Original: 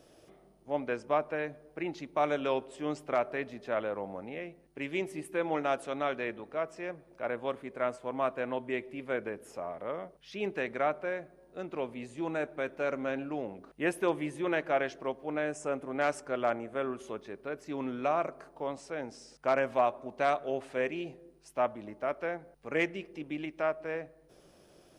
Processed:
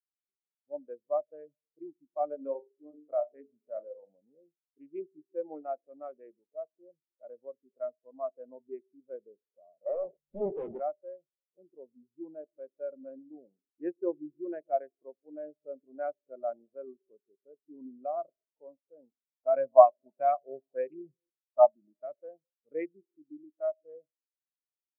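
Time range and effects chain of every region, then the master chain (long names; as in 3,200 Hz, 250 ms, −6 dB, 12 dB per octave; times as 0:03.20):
0:02.35–0:04.10: mains-hum notches 50/100/150/200/250/300/350/400/450 Hz + flutter between parallel walls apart 6.9 metres, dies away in 0.35 s
0:09.86–0:10.80: low-shelf EQ 180 Hz +11.5 dB + mid-hump overdrive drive 30 dB, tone 1,300 Hz, clips at −19 dBFS + highs frequency-modulated by the lows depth 0.94 ms
0:19.54–0:22.19: low shelf with overshoot 110 Hz −7 dB, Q 3 + auto-filter low-pass sine 3.2 Hz 890–4,600 Hz
whole clip: adaptive Wiener filter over 25 samples; elliptic low-pass filter 3,800 Hz; every bin expanded away from the loudest bin 2.5 to 1; level +6.5 dB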